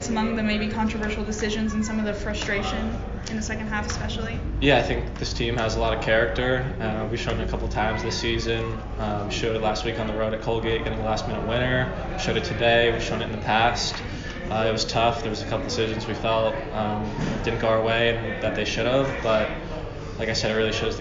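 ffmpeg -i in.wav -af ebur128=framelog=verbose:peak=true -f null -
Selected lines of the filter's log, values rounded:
Integrated loudness:
  I:         -24.8 LUFS
  Threshold: -34.8 LUFS
Loudness range:
  LRA:         3.0 LU
  Threshold: -44.8 LUFS
  LRA low:   -26.3 LUFS
  LRA high:  -23.3 LUFS
True peak:
  Peak:       -6.7 dBFS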